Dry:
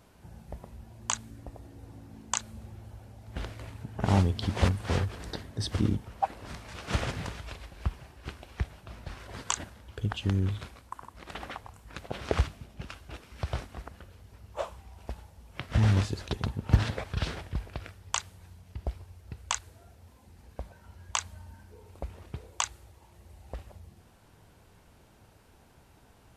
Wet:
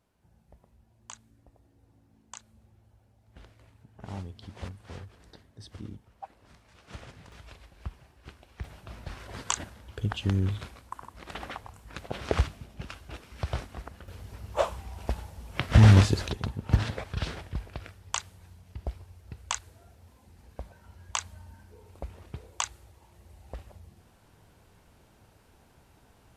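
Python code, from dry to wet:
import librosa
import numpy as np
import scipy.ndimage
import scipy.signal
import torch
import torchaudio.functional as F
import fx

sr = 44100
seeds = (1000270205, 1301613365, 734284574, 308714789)

y = fx.gain(x, sr, db=fx.steps((0.0, -15.0), (7.32, -7.5), (8.64, 1.0), (14.08, 8.0), (16.31, -1.0)))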